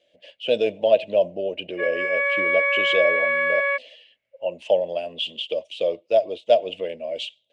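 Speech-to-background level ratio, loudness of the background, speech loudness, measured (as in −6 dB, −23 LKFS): −3.5 dB, −21.0 LKFS, −24.5 LKFS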